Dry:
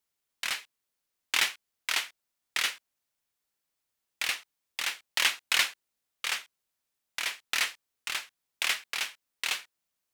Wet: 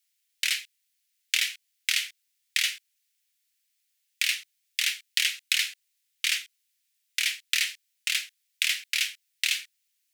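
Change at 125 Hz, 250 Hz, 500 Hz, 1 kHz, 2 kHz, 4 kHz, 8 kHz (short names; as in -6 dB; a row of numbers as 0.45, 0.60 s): n/a, under -25 dB, under -30 dB, -14.0 dB, +2.0 dB, +4.0 dB, +4.0 dB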